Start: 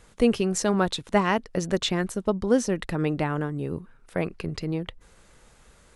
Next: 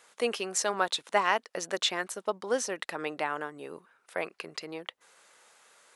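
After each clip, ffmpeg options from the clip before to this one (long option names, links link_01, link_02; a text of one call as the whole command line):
ffmpeg -i in.wav -af "highpass=650" out.wav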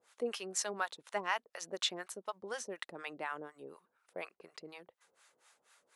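ffmpeg -i in.wav -filter_complex "[0:a]acrossover=split=670[link_01][link_02];[link_01]aeval=exprs='val(0)*(1-1/2+1/2*cos(2*PI*4.1*n/s))':channel_layout=same[link_03];[link_02]aeval=exprs='val(0)*(1-1/2-1/2*cos(2*PI*4.1*n/s))':channel_layout=same[link_04];[link_03][link_04]amix=inputs=2:normalize=0,volume=-4.5dB" out.wav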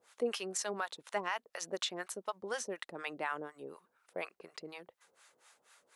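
ffmpeg -i in.wav -af "alimiter=level_in=2.5dB:limit=-24dB:level=0:latency=1:release=151,volume=-2.5dB,volume=3dB" out.wav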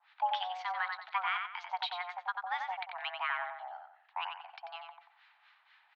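ffmpeg -i in.wav -filter_complex "[0:a]highpass=frequency=300:width_type=q:width=0.5412,highpass=frequency=300:width_type=q:width=1.307,lowpass=frequency=3500:width_type=q:width=0.5176,lowpass=frequency=3500:width_type=q:width=0.7071,lowpass=frequency=3500:width_type=q:width=1.932,afreqshift=360,asplit=2[link_01][link_02];[link_02]adelay=91,lowpass=frequency=2800:poles=1,volume=-3.5dB,asplit=2[link_03][link_04];[link_04]adelay=91,lowpass=frequency=2800:poles=1,volume=0.38,asplit=2[link_05][link_06];[link_06]adelay=91,lowpass=frequency=2800:poles=1,volume=0.38,asplit=2[link_07][link_08];[link_08]adelay=91,lowpass=frequency=2800:poles=1,volume=0.38,asplit=2[link_09][link_10];[link_10]adelay=91,lowpass=frequency=2800:poles=1,volume=0.38[link_11];[link_01][link_03][link_05][link_07][link_09][link_11]amix=inputs=6:normalize=0,volume=2dB" out.wav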